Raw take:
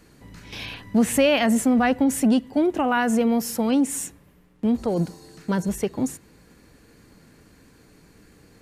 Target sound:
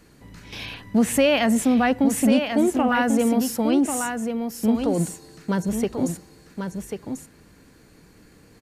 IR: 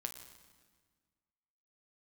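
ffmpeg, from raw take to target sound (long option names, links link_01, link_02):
-af "aecho=1:1:1091:0.473"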